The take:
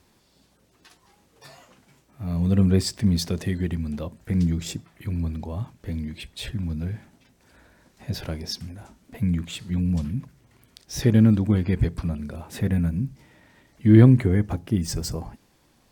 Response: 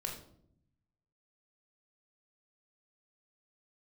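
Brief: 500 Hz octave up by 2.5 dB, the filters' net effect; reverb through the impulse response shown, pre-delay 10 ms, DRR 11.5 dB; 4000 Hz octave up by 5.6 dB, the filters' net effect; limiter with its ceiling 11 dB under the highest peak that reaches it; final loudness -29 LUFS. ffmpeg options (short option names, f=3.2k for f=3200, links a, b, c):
-filter_complex "[0:a]equalizer=f=500:t=o:g=3.5,equalizer=f=4k:t=o:g=7,alimiter=limit=-12dB:level=0:latency=1,asplit=2[a][b];[1:a]atrim=start_sample=2205,adelay=10[c];[b][c]afir=irnorm=-1:irlink=0,volume=-12dB[d];[a][d]amix=inputs=2:normalize=0,volume=-4dB"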